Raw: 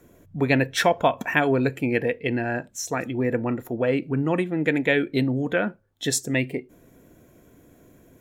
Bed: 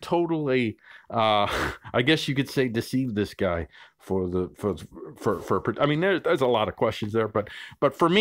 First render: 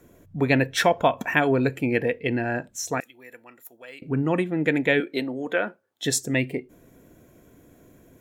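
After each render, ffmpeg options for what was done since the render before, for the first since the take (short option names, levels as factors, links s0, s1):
-filter_complex "[0:a]asettb=1/sr,asplit=3[s0][s1][s2];[s0]atrim=end=3.004[s3];[s1]atrim=start=3:end=4.02,asetpts=PTS-STARTPTS,afade=t=in:d=0.004:c=qsin,afade=t=out:st=1.016:d=0.004:c=qsin,aderivative[s4];[s2]atrim=start=4.016[s5];[s3][s4]acrossfade=d=0.004:c1=hsin:c2=qsin[s6];[s6][s5]acrossfade=d=0.004:c1=qsin:c2=hsin,asettb=1/sr,asplit=3[s7][s8][s9];[s7]atrim=end=5.004[s10];[s8]atrim=start=5:end=6.05,asetpts=PTS-STARTPTS,afade=t=in:d=0.004:c=qsin,afade=t=out:st=1.046:d=0.004:c=qsin,highpass=350[s11];[s9]atrim=start=6.046[s12];[s10][s11]acrossfade=d=0.004:c1=hsin:c2=qsin[s13];[s13][s12]acrossfade=d=0.004:c1=qsin:c2=hsin"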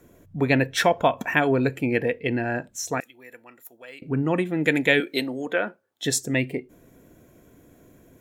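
-filter_complex "[0:a]asettb=1/sr,asplit=3[s0][s1][s2];[s0]atrim=end=4.454[s3];[s1]atrim=start=4.45:end=5.46,asetpts=PTS-STARTPTS,afade=t=in:d=0.004:c=qsin,afade=t=out:st=1.006:d=0.004:c=qsin,highshelf=f=3500:g=12[s4];[s2]atrim=start=5.456[s5];[s3][s4]acrossfade=d=0.004:c1=hsin:c2=qsin[s6];[s6][s5]acrossfade=d=0.004:c1=qsin:c2=hsin"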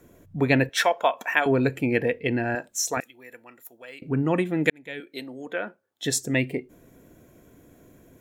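-filter_complex "[0:a]asettb=1/sr,asplit=3[s0][s1][s2];[s0]atrim=end=0.694[s3];[s1]atrim=start=0.69:end=1.46,asetpts=PTS-STARTPTS,afade=t=in:d=0.004:c=qsin,afade=t=out:st=0.766:d=0.004:c=qsin,highpass=570[s4];[s2]atrim=start=1.456[s5];[s3][s4]acrossfade=d=0.004:c1=hsin:c2=qsin[s6];[s6][s5]acrossfade=d=0.004:c1=qsin:c2=hsin,asettb=1/sr,asplit=3[s7][s8][s9];[s7]atrim=end=2.554[s10];[s8]atrim=start=2.55:end=2.97,asetpts=PTS-STARTPTS,afade=t=in:d=0.004:c=qsin,afade=t=out:st=0.416:d=0.004:c=qsin,bass=f=250:g=-13,treble=f=4000:g=6[s11];[s9]atrim=start=2.966[s12];[s10][s11]acrossfade=d=0.004:c1=hsin:c2=qsin[s13];[s13][s12]acrossfade=d=0.004:c1=qsin:c2=hsin,asplit=2[s14][s15];[s14]atrim=end=4.7,asetpts=PTS-STARTPTS,afade=t=out:st=4.696:d=0.004:c=hsin[s16];[s15]atrim=start=4.7,asetpts=PTS-STARTPTS,afade=t=in:d=1.66[s17];[s16][s17]concat=n=2:v=0:a=1"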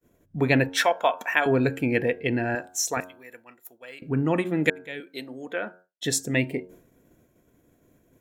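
-af "bandreject=f=91.17:t=h:w=4,bandreject=f=182.34:t=h:w=4,bandreject=f=273.51:t=h:w=4,bandreject=f=364.68:t=h:w=4,bandreject=f=455.85:t=h:w=4,bandreject=f=547.02:t=h:w=4,bandreject=f=638.19:t=h:w=4,bandreject=f=729.36:t=h:w=4,bandreject=f=820.53:t=h:w=4,bandreject=f=911.7:t=h:w=4,bandreject=f=1002.87:t=h:w=4,bandreject=f=1094.04:t=h:w=4,bandreject=f=1185.21:t=h:w=4,bandreject=f=1276.38:t=h:w=4,bandreject=f=1367.55:t=h:w=4,bandreject=f=1458.72:t=h:w=4,bandreject=f=1549.89:t=h:w=4,bandreject=f=1641.06:t=h:w=4,agate=range=0.0224:threshold=0.00501:ratio=3:detection=peak"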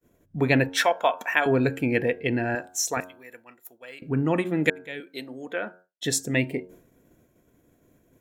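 -af anull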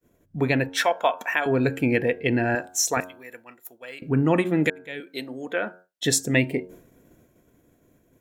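-af "dynaudnorm=f=340:g=9:m=2,alimiter=limit=0.376:level=0:latency=1:release=467"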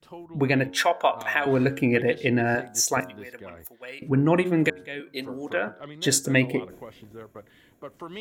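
-filter_complex "[1:a]volume=0.119[s0];[0:a][s0]amix=inputs=2:normalize=0"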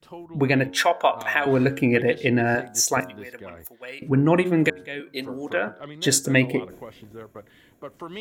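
-af "volume=1.26"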